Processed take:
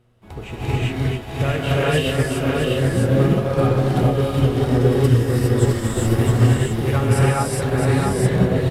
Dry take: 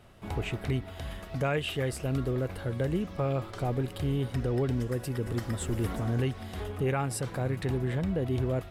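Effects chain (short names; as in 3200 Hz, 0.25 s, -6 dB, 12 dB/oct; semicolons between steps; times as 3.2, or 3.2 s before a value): buzz 120 Hz, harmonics 4, -52 dBFS; on a send: echo 0.663 s -4 dB; on the sum: non-linear reverb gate 0.44 s rising, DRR -7 dB; upward expander 1.5:1, over -47 dBFS; gain +6 dB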